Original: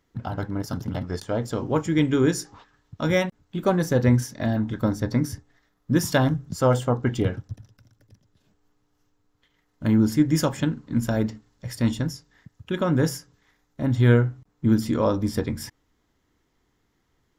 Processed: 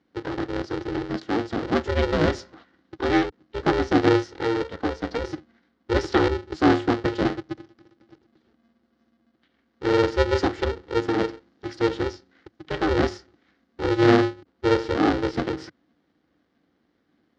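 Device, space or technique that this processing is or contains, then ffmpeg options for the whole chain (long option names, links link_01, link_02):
ring modulator pedal into a guitar cabinet: -filter_complex "[0:a]asettb=1/sr,asplit=3[link_01][link_02][link_03];[link_01]atrim=end=4.624[link_04];[link_02]atrim=start=4.62:end=5.24,asetpts=PTS-STARTPTS,afade=type=in:duration=0.004:curve=qsin,afade=type=out:start_time=0.616:duration=0.004:curve=qsin,highpass=frequency=240:width=0.5412,highpass=frequency=240:width=1.3066[link_05];[link_03]atrim=start=5.236[link_06];[link_04][link_05]acrossfade=duration=0.004:curve1=hsin:curve2=qsin[link_07];[link_07][link_06]acrossfade=duration=0.004:curve1=qsin:curve2=hsin,aeval=exprs='val(0)*sgn(sin(2*PI*230*n/s))':channel_layout=same,highpass=78,equalizer=frequency=120:width_type=q:width=4:gain=-9,equalizer=frequency=300:width_type=q:width=4:gain=8,equalizer=frequency=610:width_type=q:width=4:gain=-6,equalizer=frequency=1000:width_type=q:width=4:gain=-6,equalizer=frequency=2500:width_type=q:width=4:gain=-7,equalizer=frequency=3500:width_type=q:width=4:gain=-3,lowpass=frequency=4400:width=0.5412,lowpass=frequency=4400:width=1.3066,volume=1dB"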